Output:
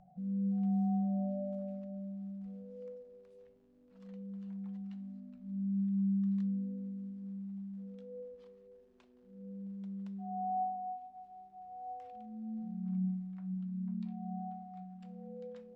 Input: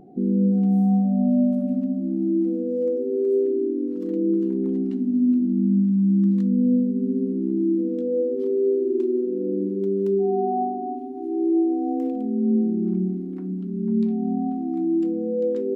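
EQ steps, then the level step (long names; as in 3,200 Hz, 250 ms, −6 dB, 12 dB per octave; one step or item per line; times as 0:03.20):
elliptic band-stop filter 190–590 Hz, stop band 40 dB
high-frequency loss of the air 86 metres
mains-hum notches 50/100/150/200 Hz
−8.0 dB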